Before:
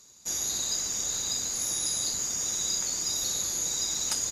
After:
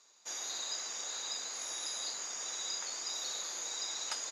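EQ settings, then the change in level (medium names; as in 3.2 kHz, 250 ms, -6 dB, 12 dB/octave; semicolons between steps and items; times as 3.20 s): high-pass 650 Hz 12 dB/octave; low-pass 3.3 kHz 6 dB/octave; distance through air 55 m; 0.0 dB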